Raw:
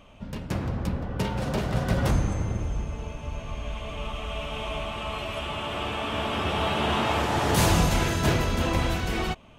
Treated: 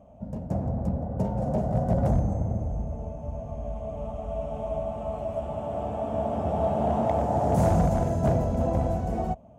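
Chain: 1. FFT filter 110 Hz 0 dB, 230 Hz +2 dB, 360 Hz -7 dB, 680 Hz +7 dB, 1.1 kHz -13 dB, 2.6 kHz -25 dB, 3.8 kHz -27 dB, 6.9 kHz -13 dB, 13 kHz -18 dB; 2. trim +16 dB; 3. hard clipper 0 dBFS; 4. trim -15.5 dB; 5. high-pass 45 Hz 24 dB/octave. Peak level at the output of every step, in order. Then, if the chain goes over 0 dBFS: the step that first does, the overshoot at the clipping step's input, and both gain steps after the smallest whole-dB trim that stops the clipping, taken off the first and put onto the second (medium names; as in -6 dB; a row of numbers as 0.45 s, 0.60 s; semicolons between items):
-10.5 dBFS, +5.5 dBFS, 0.0 dBFS, -15.5 dBFS, -11.0 dBFS; step 2, 5.5 dB; step 2 +10 dB, step 4 -9.5 dB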